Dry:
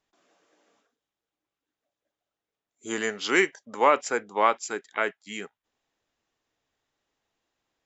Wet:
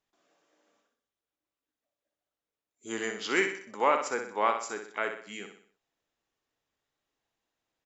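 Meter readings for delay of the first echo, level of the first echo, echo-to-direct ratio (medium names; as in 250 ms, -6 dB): 62 ms, -7.0 dB, -6.0 dB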